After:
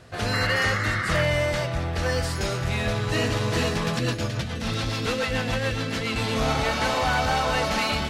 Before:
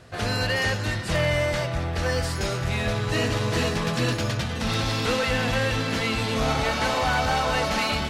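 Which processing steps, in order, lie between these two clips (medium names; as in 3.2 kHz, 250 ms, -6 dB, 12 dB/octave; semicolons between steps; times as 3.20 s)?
0.33–1.23 s: painted sound noise 1.1–2.2 kHz -29 dBFS; 3.99–6.16 s: rotary cabinet horn 7 Hz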